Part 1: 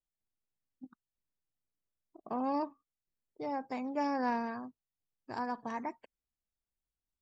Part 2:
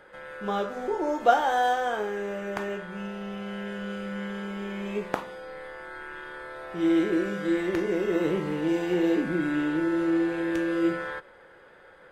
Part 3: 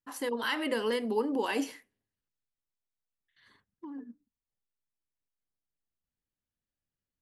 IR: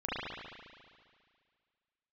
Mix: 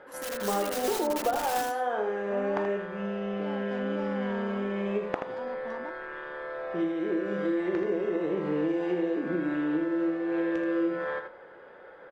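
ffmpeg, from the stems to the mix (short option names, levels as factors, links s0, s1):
-filter_complex "[0:a]alimiter=level_in=2.99:limit=0.0631:level=0:latency=1,volume=0.335,adynamicsmooth=sensitivity=6.5:basefreq=1900,volume=1[s0];[1:a]equalizer=f=560:w=0.31:g=13.5,acompressor=threshold=0.141:ratio=6,lowpass=4200,volume=0.355,asplit=2[s1][s2];[s2]volume=0.422[s3];[2:a]aeval=exprs='(mod(20*val(0)+1,2)-1)/20':c=same,volume=0.355,asplit=2[s4][s5];[s5]volume=0.596[s6];[s3][s6]amix=inputs=2:normalize=0,aecho=0:1:80:1[s7];[s0][s1][s4][s7]amix=inputs=4:normalize=0,highshelf=f=5300:g=9.5"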